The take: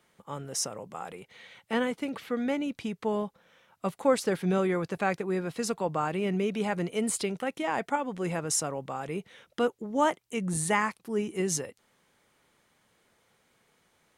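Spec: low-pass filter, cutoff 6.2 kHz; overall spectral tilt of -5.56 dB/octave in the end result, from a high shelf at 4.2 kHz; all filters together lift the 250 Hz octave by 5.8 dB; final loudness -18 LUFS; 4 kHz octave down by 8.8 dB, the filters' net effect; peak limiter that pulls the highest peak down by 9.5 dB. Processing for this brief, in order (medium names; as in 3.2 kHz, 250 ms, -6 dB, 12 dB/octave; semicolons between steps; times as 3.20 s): low-pass 6.2 kHz; peaking EQ 250 Hz +7.5 dB; peaking EQ 4 kHz -8.5 dB; treble shelf 4.2 kHz -6 dB; trim +13 dB; peak limiter -7.5 dBFS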